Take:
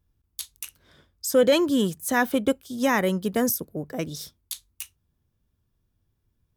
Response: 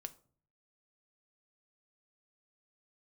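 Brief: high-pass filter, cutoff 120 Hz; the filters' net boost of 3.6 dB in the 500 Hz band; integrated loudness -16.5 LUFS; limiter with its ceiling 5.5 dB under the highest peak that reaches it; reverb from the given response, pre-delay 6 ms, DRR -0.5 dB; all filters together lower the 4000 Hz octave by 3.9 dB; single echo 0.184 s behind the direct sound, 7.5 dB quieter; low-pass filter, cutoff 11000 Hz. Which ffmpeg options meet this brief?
-filter_complex "[0:a]highpass=120,lowpass=11k,equalizer=f=500:t=o:g=4,equalizer=f=4k:t=o:g=-5.5,alimiter=limit=-12dB:level=0:latency=1,aecho=1:1:184:0.422,asplit=2[a][b];[1:a]atrim=start_sample=2205,adelay=6[c];[b][c]afir=irnorm=-1:irlink=0,volume=4.5dB[d];[a][d]amix=inputs=2:normalize=0,volume=3.5dB"

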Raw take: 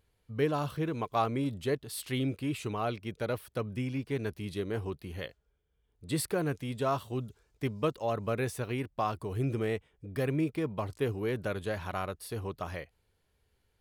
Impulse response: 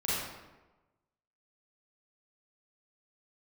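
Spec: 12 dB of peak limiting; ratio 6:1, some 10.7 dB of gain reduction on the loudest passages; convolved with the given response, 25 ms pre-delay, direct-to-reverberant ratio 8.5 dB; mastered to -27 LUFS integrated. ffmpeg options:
-filter_complex "[0:a]acompressor=threshold=-36dB:ratio=6,alimiter=level_in=12.5dB:limit=-24dB:level=0:latency=1,volume=-12.5dB,asplit=2[a][b];[1:a]atrim=start_sample=2205,adelay=25[c];[b][c]afir=irnorm=-1:irlink=0,volume=-16.5dB[d];[a][d]amix=inputs=2:normalize=0,volume=18dB"

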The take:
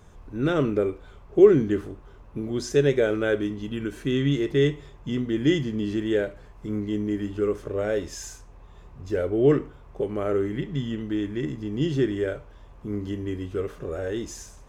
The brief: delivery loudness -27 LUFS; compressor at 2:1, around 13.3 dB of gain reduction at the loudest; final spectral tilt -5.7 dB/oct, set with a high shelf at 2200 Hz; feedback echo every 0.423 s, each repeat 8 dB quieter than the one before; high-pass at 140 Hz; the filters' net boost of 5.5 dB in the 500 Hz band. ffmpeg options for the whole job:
-af "highpass=140,equalizer=f=500:t=o:g=7,highshelf=f=2.2k:g=4.5,acompressor=threshold=-29dB:ratio=2,aecho=1:1:423|846|1269|1692|2115:0.398|0.159|0.0637|0.0255|0.0102,volume=2dB"

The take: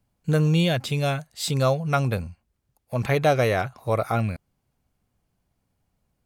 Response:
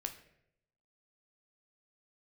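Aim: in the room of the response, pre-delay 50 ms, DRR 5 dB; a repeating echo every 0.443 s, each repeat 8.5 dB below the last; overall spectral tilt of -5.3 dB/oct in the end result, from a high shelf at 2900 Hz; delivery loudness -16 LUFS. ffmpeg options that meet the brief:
-filter_complex "[0:a]highshelf=f=2.9k:g=4.5,aecho=1:1:443|886|1329|1772:0.376|0.143|0.0543|0.0206,asplit=2[a][b];[1:a]atrim=start_sample=2205,adelay=50[c];[b][c]afir=irnorm=-1:irlink=0,volume=-4dB[d];[a][d]amix=inputs=2:normalize=0,volume=6.5dB"

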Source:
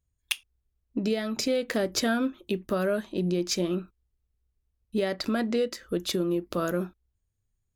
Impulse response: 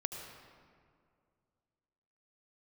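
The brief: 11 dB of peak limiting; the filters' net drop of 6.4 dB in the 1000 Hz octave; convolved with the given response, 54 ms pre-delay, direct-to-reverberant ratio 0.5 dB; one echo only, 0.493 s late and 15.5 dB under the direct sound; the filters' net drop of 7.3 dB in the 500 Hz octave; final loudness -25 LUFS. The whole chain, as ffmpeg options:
-filter_complex "[0:a]equalizer=f=500:t=o:g=-8,equalizer=f=1k:t=o:g=-7,alimiter=limit=-22dB:level=0:latency=1,aecho=1:1:493:0.168,asplit=2[a][b];[1:a]atrim=start_sample=2205,adelay=54[c];[b][c]afir=irnorm=-1:irlink=0,volume=-1dB[d];[a][d]amix=inputs=2:normalize=0,volume=5.5dB"

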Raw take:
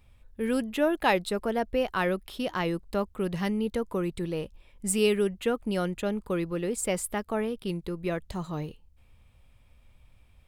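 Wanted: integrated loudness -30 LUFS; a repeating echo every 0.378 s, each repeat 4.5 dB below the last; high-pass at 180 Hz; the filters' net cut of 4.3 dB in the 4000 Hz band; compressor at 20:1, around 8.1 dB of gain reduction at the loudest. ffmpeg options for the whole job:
-af "highpass=180,equalizer=f=4k:t=o:g=-6.5,acompressor=threshold=-27dB:ratio=20,aecho=1:1:378|756|1134|1512|1890|2268|2646|3024|3402:0.596|0.357|0.214|0.129|0.0772|0.0463|0.0278|0.0167|0.01,volume=2dB"

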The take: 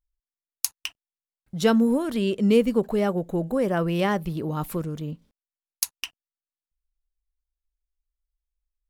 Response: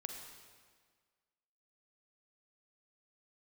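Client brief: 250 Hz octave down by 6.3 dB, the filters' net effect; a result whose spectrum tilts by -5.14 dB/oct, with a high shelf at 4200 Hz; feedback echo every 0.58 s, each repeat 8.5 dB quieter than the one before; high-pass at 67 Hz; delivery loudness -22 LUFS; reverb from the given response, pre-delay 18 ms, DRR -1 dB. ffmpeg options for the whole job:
-filter_complex "[0:a]highpass=67,equalizer=f=250:t=o:g=-8,highshelf=f=4.2k:g=-4.5,aecho=1:1:580|1160|1740|2320:0.376|0.143|0.0543|0.0206,asplit=2[a][b];[1:a]atrim=start_sample=2205,adelay=18[c];[b][c]afir=irnorm=-1:irlink=0,volume=3dB[d];[a][d]amix=inputs=2:normalize=0,volume=2.5dB"

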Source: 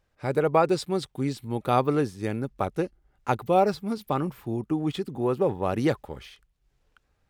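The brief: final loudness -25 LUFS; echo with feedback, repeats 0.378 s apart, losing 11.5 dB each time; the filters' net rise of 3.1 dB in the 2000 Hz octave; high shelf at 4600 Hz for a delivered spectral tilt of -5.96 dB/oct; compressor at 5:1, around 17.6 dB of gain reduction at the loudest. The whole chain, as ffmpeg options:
-af "equalizer=f=2k:t=o:g=5,highshelf=f=4.6k:g=-4.5,acompressor=threshold=-36dB:ratio=5,aecho=1:1:378|756|1134:0.266|0.0718|0.0194,volume=15dB"

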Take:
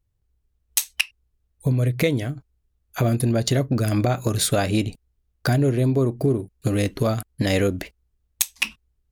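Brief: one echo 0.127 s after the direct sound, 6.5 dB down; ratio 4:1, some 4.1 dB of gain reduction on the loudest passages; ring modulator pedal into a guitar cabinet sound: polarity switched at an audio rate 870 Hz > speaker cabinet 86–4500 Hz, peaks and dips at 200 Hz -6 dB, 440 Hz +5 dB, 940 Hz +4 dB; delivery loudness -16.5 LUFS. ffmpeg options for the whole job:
-af "acompressor=threshold=-21dB:ratio=4,aecho=1:1:127:0.473,aeval=exprs='val(0)*sgn(sin(2*PI*870*n/s))':c=same,highpass=86,equalizer=f=200:t=q:w=4:g=-6,equalizer=f=440:t=q:w=4:g=5,equalizer=f=940:t=q:w=4:g=4,lowpass=f=4.5k:w=0.5412,lowpass=f=4.5k:w=1.3066,volume=7.5dB"

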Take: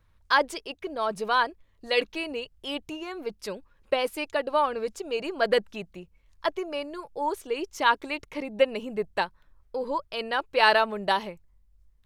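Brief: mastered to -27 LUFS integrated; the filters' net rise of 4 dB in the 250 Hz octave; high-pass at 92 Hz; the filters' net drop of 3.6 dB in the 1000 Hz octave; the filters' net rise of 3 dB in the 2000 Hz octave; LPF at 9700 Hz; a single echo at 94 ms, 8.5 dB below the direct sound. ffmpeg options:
-af "highpass=92,lowpass=9.7k,equalizer=f=250:t=o:g=5.5,equalizer=f=1k:t=o:g=-6,equalizer=f=2k:t=o:g=6,aecho=1:1:94:0.376"

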